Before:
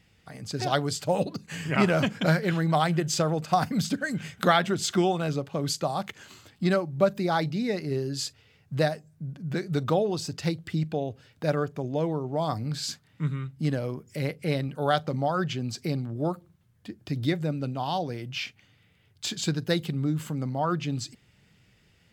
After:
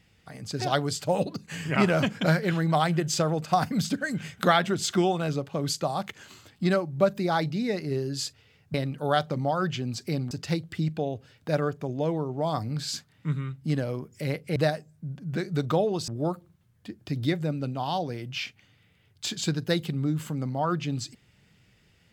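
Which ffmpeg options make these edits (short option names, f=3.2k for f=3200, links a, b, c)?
-filter_complex "[0:a]asplit=5[a][b][c][d][e];[a]atrim=end=8.742[f];[b]atrim=start=14.508:end=16.082[g];[c]atrim=start=10.258:end=14.512[h];[d]atrim=start=8.738:end=10.262[i];[e]atrim=start=16.078[j];[f][g]acrossfade=d=0.004:c1=hsin:c2=hsin[k];[k][h]acrossfade=d=0.004:c1=hsin:c2=hsin[l];[l][i]acrossfade=d=0.004:c1=hsin:c2=hsin[m];[m][j]acrossfade=d=0.004:c1=hsin:c2=hsin"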